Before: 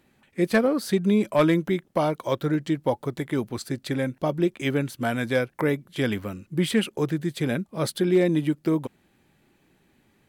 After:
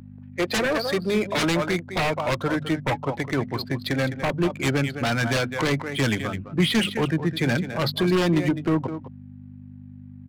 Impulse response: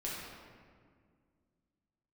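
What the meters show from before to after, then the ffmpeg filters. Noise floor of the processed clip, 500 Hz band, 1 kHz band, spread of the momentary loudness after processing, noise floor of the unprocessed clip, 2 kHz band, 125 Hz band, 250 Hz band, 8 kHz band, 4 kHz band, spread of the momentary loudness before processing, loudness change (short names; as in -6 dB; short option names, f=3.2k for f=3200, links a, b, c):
-42 dBFS, -1.0 dB, +3.0 dB, 15 LU, -65 dBFS, +5.5 dB, +3.0 dB, -0.5 dB, +3.5 dB, +7.0 dB, 8 LU, +1.0 dB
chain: -filter_complex "[0:a]aeval=exprs='if(lt(val(0),0),0.708*val(0),val(0))':c=same,highshelf=f=4.2k:g=-3.5,afftdn=nr=15:nf=-40,bandreject=f=50:t=h:w=6,bandreject=f=100:t=h:w=6,bandreject=f=150:t=h:w=6,bandreject=f=200:t=h:w=6,bandreject=f=250:t=h:w=6,asubboost=boost=10:cutoff=150,aeval=exprs='val(0)+0.0316*(sin(2*PI*50*n/s)+sin(2*PI*2*50*n/s)/2+sin(2*PI*3*50*n/s)/3+sin(2*PI*4*50*n/s)/4+sin(2*PI*5*50*n/s)/5)':c=same,aecho=1:1:208:0.224,aresample=11025,aresample=44100,acrossover=split=430[a][b];[a]highpass=f=83:w=0.5412,highpass=f=83:w=1.3066[c];[b]aeval=exprs='0.224*sin(PI/2*6.31*val(0)/0.224)':c=same[d];[c][d]amix=inputs=2:normalize=0,adynamicsmooth=sensitivity=7:basefreq=1.3k,volume=-7dB"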